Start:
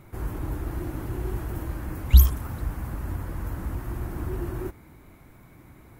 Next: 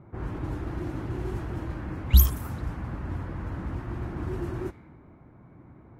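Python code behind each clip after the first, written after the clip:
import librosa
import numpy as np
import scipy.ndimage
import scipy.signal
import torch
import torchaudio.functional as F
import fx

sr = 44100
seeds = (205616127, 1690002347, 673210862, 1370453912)

y = fx.highpass(x, sr, hz=150.0, slope=6)
y = fx.env_lowpass(y, sr, base_hz=1000.0, full_db=-26.5)
y = fx.bass_treble(y, sr, bass_db=5, treble_db=2)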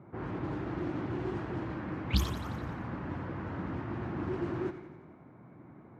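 y = fx.bandpass_edges(x, sr, low_hz=140.0, high_hz=4300.0)
y = fx.echo_feedback(y, sr, ms=88, feedback_pct=59, wet_db=-12.5)
y = fx.doppler_dist(y, sr, depth_ms=0.39)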